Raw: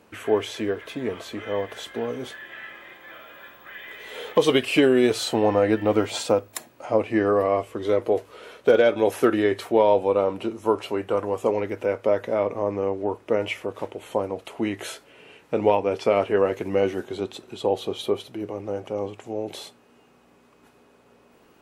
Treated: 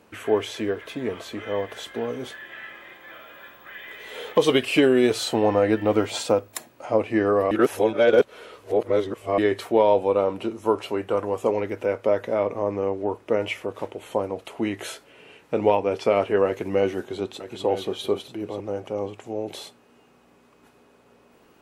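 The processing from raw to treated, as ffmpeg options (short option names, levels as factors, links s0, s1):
-filter_complex "[0:a]asettb=1/sr,asplit=3[s0][s1][s2];[s0]atrim=end=16.464[s3];[s1]atrim=start=16.46:end=18.6,asetpts=PTS-STARTPTS,afade=t=in:d=0.004:c=qsin,afade=t=out:st=2.136:d=0.004:c=qsin,aecho=1:1:939:0.266,atrim=end_sample=94374[s4];[s2]atrim=start=18.596[s5];[s3][s4]acrossfade=d=0.004:c1=hsin:c2=qsin[s6];[s6][s5]acrossfade=d=0.004:c1=qsin:c2=hsin,asplit=3[s7][s8][s9];[s7]atrim=end=7.512[s10];[s8]atrim=start=7.508:end=9.382,asetpts=PTS-STARTPTS,areverse[s11];[s9]atrim=start=9.378[s12];[s10][s11]acrossfade=d=0.004:c1=hsin:c2=hsin[s13];[s13][s12]acrossfade=d=0.004:c1=hsin:c2=hsin"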